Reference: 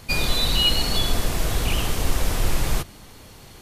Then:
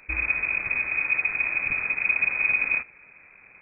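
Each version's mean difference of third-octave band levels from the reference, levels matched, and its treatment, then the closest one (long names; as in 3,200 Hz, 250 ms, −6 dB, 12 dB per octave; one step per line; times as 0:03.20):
21.5 dB: log-companded quantiser 4 bits
amplitude modulation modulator 260 Hz, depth 45%
voice inversion scrambler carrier 2,500 Hz
level −4.5 dB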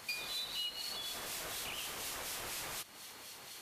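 7.0 dB: high-pass filter 1,200 Hz 6 dB per octave
downward compressor 6 to 1, threshold −39 dBFS, peak gain reduction 20.5 dB
two-band tremolo in antiphase 4.1 Hz, depth 50%, crossover 2,200 Hz
level +1.5 dB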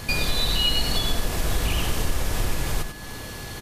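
3.5 dB: downward compressor 2.5 to 1, threshold −34 dBFS, peak gain reduction 14 dB
steady tone 1,700 Hz −54 dBFS
on a send: single-tap delay 96 ms −7 dB
on the sum: level +8.5 dB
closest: third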